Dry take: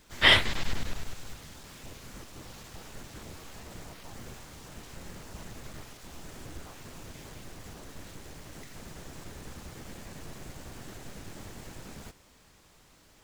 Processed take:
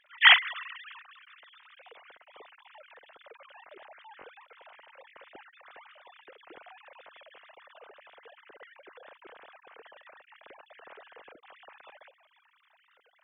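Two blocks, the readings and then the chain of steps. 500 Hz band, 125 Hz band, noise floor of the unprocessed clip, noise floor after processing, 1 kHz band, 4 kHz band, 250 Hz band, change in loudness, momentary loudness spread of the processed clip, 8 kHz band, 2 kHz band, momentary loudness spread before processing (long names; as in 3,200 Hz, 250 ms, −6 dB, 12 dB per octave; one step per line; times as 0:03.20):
−7.5 dB, below −35 dB, −60 dBFS, −68 dBFS, +2.0 dB, +0.5 dB, −21.0 dB, +4.5 dB, 21 LU, below −35 dB, +3.5 dB, 23 LU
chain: three sine waves on the formant tracks
every ending faded ahead of time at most 250 dB per second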